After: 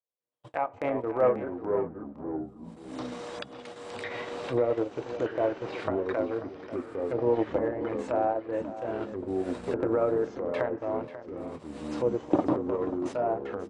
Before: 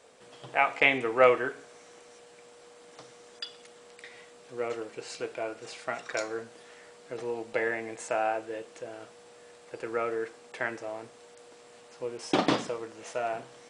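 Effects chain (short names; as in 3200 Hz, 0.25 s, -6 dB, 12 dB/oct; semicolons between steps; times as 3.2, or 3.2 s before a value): recorder AGC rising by 7.3 dB/s; gate -40 dBFS, range -46 dB; treble ducked by the level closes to 830 Hz, closed at -24.5 dBFS; fifteen-band EQ 100 Hz +11 dB, 1000 Hz +6 dB, 6300 Hz -4 dB; transient shaper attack -6 dB, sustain -10 dB; small resonant body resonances 310/560/3800 Hz, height 8 dB; echoes that change speed 0.174 s, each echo -4 st, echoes 3, each echo -6 dB; echo 0.539 s -13.5 dB; gain -2.5 dB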